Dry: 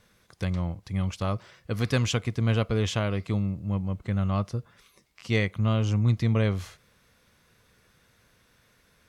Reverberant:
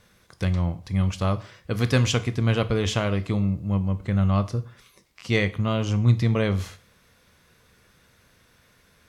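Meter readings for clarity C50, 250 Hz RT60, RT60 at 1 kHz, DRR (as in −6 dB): 18.0 dB, 0.40 s, 0.45 s, 12.0 dB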